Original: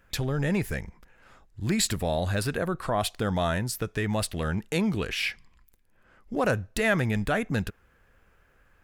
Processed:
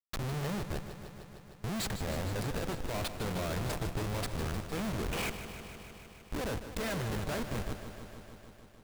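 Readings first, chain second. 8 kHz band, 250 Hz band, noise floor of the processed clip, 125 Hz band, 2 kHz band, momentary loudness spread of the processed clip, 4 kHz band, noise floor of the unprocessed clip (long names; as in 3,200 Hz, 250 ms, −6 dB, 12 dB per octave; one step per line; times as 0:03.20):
−8.5 dB, −9.0 dB, −55 dBFS, −7.0 dB, −10.0 dB, 15 LU, −7.5 dB, −63 dBFS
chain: delay with a band-pass on its return 397 ms, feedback 49%, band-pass 900 Hz, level −10.5 dB
comparator with hysteresis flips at −28 dBFS
feedback echo at a low word length 153 ms, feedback 80%, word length 10 bits, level −11 dB
level −5.5 dB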